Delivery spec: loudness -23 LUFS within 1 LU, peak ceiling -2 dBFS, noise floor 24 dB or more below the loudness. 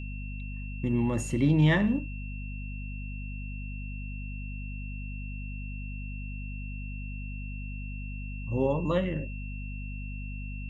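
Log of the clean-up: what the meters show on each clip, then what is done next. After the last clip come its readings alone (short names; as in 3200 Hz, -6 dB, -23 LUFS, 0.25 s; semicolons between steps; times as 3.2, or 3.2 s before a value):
hum 50 Hz; harmonics up to 250 Hz; hum level -34 dBFS; steady tone 2700 Hz; tone level -45 dBFS; loudness -32.5 LUFS; peak -12.5 dBFS; loudness target -23.0 LUFS
-> notches 50/100/150/200/250 Hz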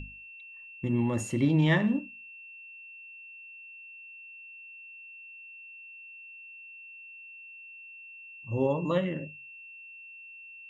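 hum none; steady tone 2700 Hz; tone level -45 dBFS
-> notch 2700 Hz, Q 30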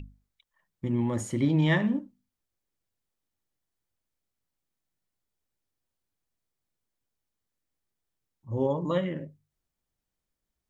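steady tone none; loudness -28.0 LUFS; peak -13.0 dBFS; loudness target -23.0 LUFS
-> gain +5 dB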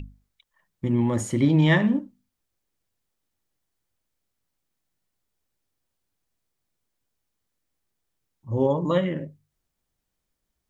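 loudness -23.0 LUFS; peak -8.0 dBFS; noise floor -81 dBFS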